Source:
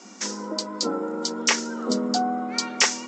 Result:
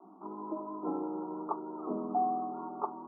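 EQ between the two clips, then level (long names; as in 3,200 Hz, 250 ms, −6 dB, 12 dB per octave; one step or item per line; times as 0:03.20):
Butterworth low-pass 1,300 Hz 96 dB per octave
phaser with its sweep stopped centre 340 Hz, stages 8
−3.5 dB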